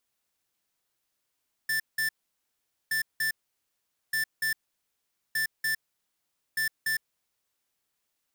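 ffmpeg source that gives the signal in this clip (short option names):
-f lavfi -i "aevalsrc='0.0422*(2*lt(mod(1770*t,1),0.5)-1)*clip(min(mod(mod(t,1.22),0.29),0.11-mod(mod(t,1.22),0.29))/0.005,0,1)*lt(mod(t,1.22),0.58)':d=6.1:s=44100"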